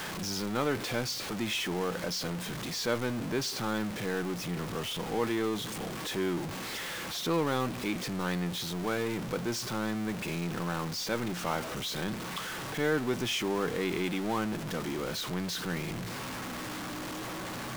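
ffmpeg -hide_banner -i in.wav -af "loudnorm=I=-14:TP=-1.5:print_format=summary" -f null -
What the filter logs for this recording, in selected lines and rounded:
Input Integrated:    -33.3 LUFS
Input True Peak:     -15.7 dBTP
Input LRA:             3.7 LU
Input Threshold:     -43.3 LUFS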